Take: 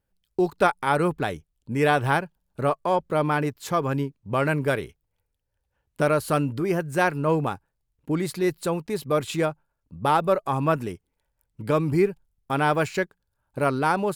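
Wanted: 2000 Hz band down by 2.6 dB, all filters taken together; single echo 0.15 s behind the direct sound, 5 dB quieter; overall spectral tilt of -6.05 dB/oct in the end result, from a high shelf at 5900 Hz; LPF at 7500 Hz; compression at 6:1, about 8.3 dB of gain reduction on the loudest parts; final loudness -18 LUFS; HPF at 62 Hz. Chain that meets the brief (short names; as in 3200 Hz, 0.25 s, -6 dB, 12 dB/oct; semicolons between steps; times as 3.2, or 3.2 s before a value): HPF 62 Hz; LPF 7500 Hz; bell 2000 Hz -3.5 dB; high shelf 5900 Hz -3.5 dB; compressor 6:1, threshold -25 dBFS; echo 0.15 s -5 dB; gain +12 dB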